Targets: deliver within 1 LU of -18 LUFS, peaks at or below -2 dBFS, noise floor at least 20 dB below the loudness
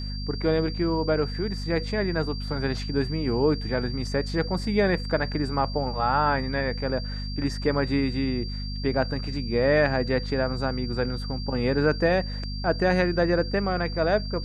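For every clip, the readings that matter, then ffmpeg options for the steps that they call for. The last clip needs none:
hum 50 Hz; harmonics up to 250 Hz; hum level -30 dBFS; steady tone 4700 Hz; tone level -38 dBFS; loudness -26.0 LUFS; peak -8.0 dBFS; loudness target -18.0 LUFS
-> -af "bandreject=f=50:t=h:w=4,bandreject=f=100:t=h:w=4,bandreject=f=150:t=h:w=4,bandreject=f=200:t=h:w=4,bandreject=f=250:t=h:w=4"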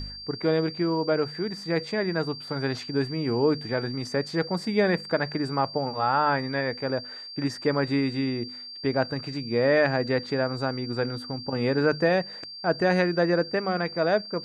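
hum none; steady tone 4700 Hz; tone level -38 dBFS
-> -af "bandreject=f=4.7k:w=30"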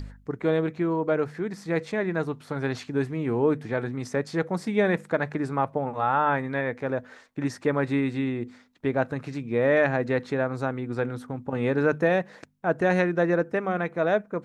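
steady tone none; loudness -26.5 LUFS; peak -9.5 dBFS; loudness target -18.0 LUFS
-> -af "volume=8.5dB,alimiter=limit=-2dB:level=0:latency=1"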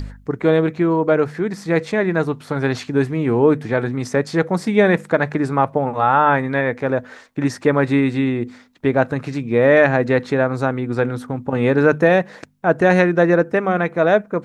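loudness -18.0 LUFS; peak -2.0 dBFS; noise floor -46 dBFS

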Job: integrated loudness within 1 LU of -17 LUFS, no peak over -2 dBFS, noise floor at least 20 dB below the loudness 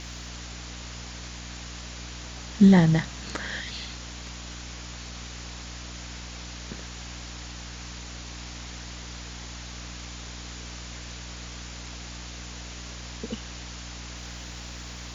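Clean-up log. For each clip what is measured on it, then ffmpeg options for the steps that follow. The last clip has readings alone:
hum 60 Hz; harmonics up to 300 Hz; hum level -39 dBFS; noise floor -40 dBFS; noise floor target -52 dBFS; loudness -31.5 LUFS; peak -7.0 dBFS; loudness target -17.0 LUFS
-> -af "bandreject=f=60:t=h:w=4,bandreject=f=120:t=h:w=4,bandreject=f=180:t=h:w=4,bandreject=f=240:t=h:w=4,bandreject=f=300:t=h:w=4"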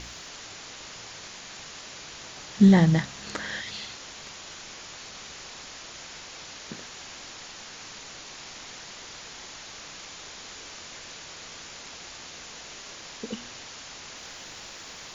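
hum none; noise floor -43 dBFS; noise floor target -52 dBFS
-> -af "afftdn=nr=9:nf=-43"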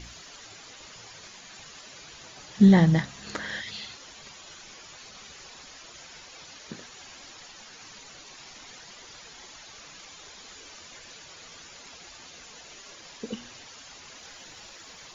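noise floor -48 dBFS; loudness -24.0 LUFS; peak -7.5 dBFS; loudness target -17.0 LUFS
-> -af "volume=7dB,alimiter=limit=-2dB:level=0:latency=1"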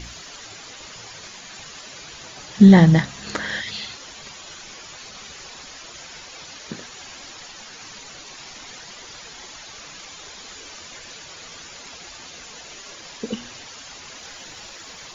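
loudness -17.5 LUFS; peak -2.0 dBFS; noise floor -41 dBFS

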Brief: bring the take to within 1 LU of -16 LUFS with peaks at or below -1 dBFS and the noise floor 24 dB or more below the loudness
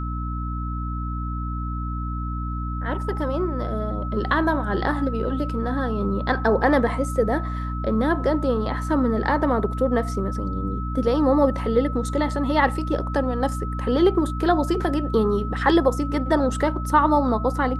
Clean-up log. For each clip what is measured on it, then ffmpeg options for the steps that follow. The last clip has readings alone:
hum 60 Hz; harmonics up to 300 Hz; hum level -25 dBFS; steady tone 1300 Hz; tone level -33 dBFS; loudness -23.0 LUFS; peak -5.0 dBFS; loudness target -16.0 LUFS
-> -af "bandreject=f=60:t=h:w=6,bandreject=f=120:t=h:w=6,bandreject=f=180:t=h:w=6,bandreject=f=240:t=h:w=6,bandreject=f=300:t=h:w=6"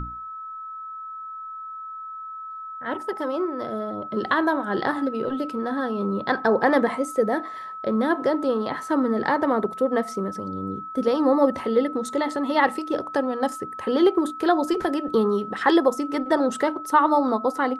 hum none; steady tone 1300 Hz; tone level -33 dBFS
-> -af "bandreject=f=1.3k:w=30"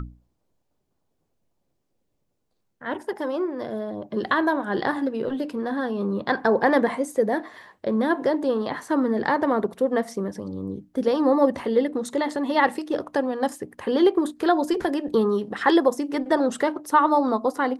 steady tone none; loudness -24.0 LUFS; peak -7.0 dBFS; loudness target -16.0 LUFS
-> -af "volume=8dB,alimiter=limit=-1dB:level=0:latency=1"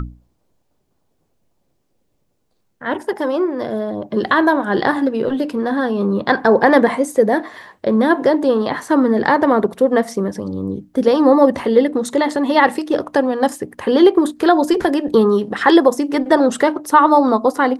loudness -16.0 LUFS; peak -1.0 dBFS; noise floor -66 dBFS

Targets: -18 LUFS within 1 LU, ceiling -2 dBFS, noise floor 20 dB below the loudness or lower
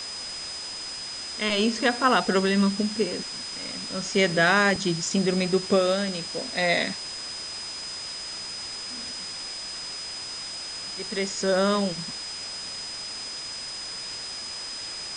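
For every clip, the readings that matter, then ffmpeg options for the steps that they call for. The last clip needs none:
steady tone 5000 Hz; tone level -34 dBFS; noise floor -36 dBFS; noise floor target -47 dBFS; loudness -26.5 LUFS; peak -7.0 dBFS; loudness target -18.0 LUFS
-> -af "bandreject=f=5k:w=30"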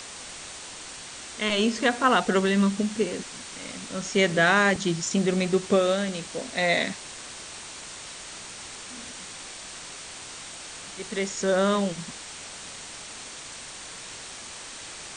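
steady tone none; noise floor -41 dBFS; noise floor target -45 dBFS
-> -af "afftdn=nr=6:nf=-41"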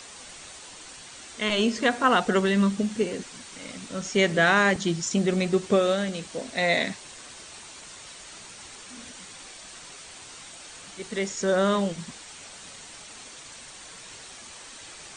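noise floor -45 dBFS; loudness -24.5 LUFS; peak -7.5 dBFS; loudness target -18.0 LUFS
-> -af "volume=6.5dB,alimiter=limit=-2dB:level=0:latency=1"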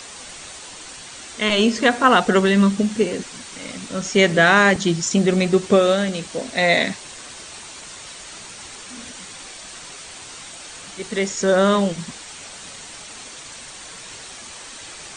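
loudness -18.0 LUFS; peak -2.0 dBFS; noise floor -38 dBFS

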